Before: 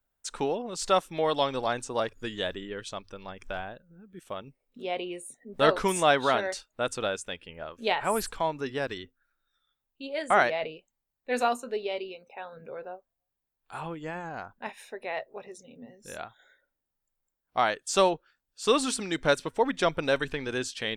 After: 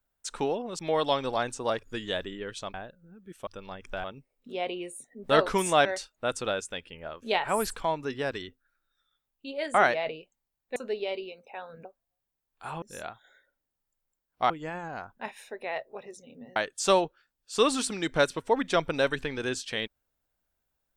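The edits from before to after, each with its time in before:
0.79–1.09 s: delete
3.04–3.61 s: move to 4.34 s
6.15–6.41 s: delete
11.32–11.59 s: delete
12.68–12.94 s: delete
15.97–17.65 s: move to 13.91 s

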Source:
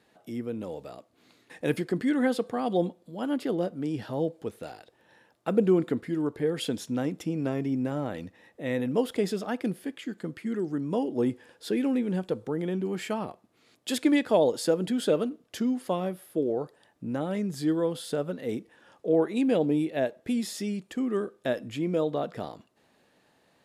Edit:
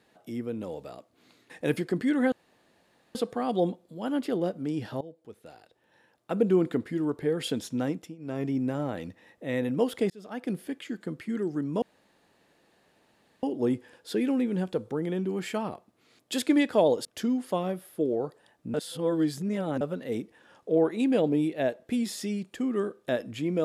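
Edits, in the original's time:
2.32 s: insert room tone 0.83 s
4.18–5.87 s: fade in, from -19.5 dB
7.07–7.61 s: dip -19.5 dB, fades 0.26 s
9.27–9.76 s: fade in
10.99 s: insert room tone 1.61 s
14.61–15.42 s: delete
17.11–18.18 s: reverse

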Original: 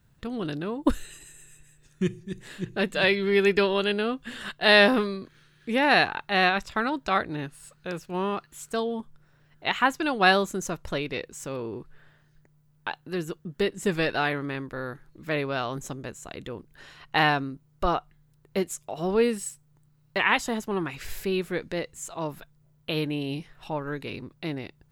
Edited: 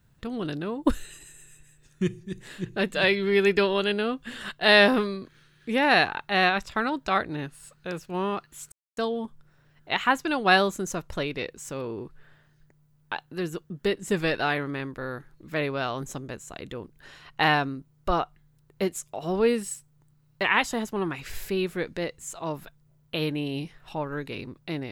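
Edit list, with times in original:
8.72 s: insert silence 0.25 s

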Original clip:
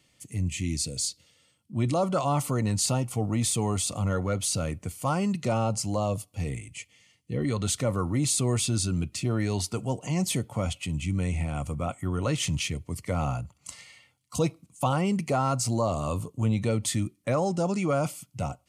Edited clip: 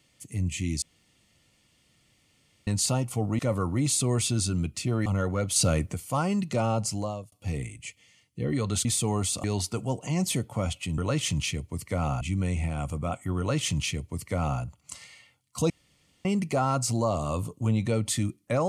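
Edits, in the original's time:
0.82–2.67 s: room tone
3.39–3.98 s: swap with 7.77–9.44 s
4.48–4.86 s: gain +5.5 dB
5.83–6.24 s: fade out
12.15–13.38 s: copy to 10.98 s
14.47–15.02 s: room tone

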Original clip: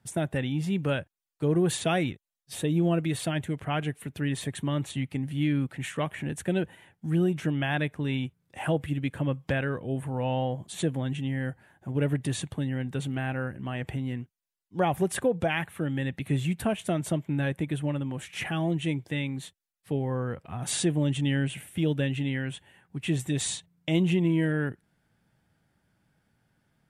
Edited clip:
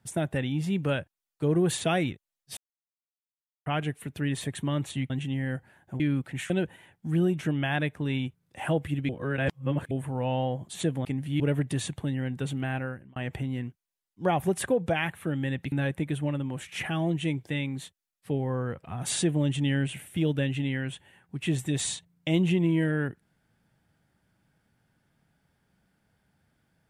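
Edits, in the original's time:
2.57–3.66 s: mute
5.10–5.45 s: swap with 11.04–11.94 s
5.95–6.49 s: delete
9.08–9.90 s: reverse
13.31–13.70 s: fade out linear
16.26–17.33 s: delete

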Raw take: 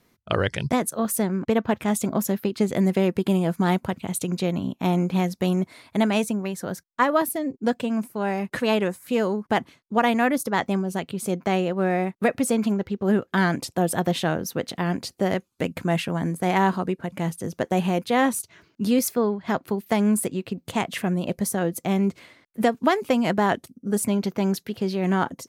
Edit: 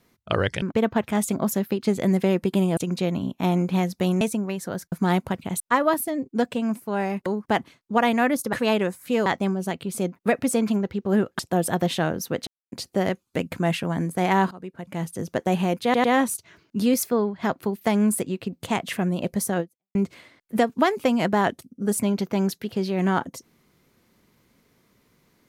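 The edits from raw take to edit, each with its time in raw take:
0.62–1.35 s: delete
3.50–4.18 s: move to 6.88 s
5.62–6.17 s: delete
8.54–9.27 s: move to 10.54 s
11.44–12.12 s: delete
13.35–13.64 s: delete
14.72–14.97 s: mute
16.76–17.45 s: fade in, from -19 dB
18.09 s: stutter 0.10 s, 3 plays
21.65–22.00 s: fade out exponential

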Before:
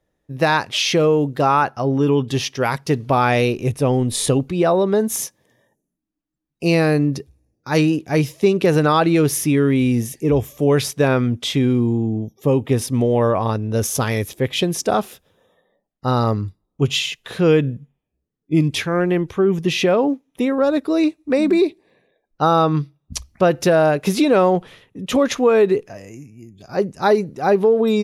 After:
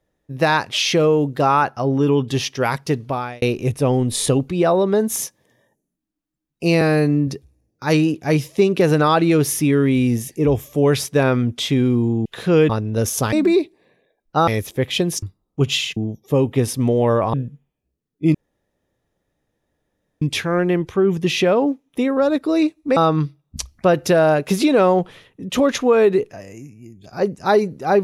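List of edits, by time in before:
2.83–3.42 s: fade out
6.81–7.12 s: stretch 1.5×
12.10–13.47 s: swap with 17.18–17.62 s
14.85–16.44 s: delete
18.63 s: insert room tone 1.87 s
21.38–22.53 s: move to 14.10 s

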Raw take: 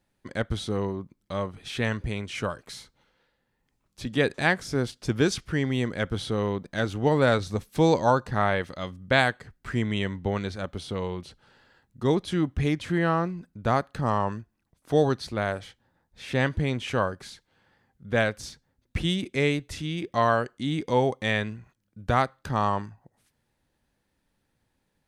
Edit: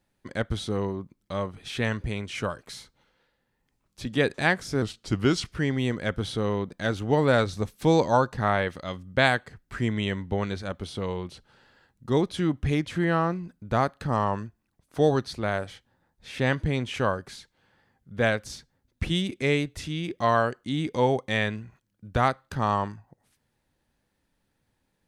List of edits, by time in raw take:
4.82–5.39 s: speed 90%

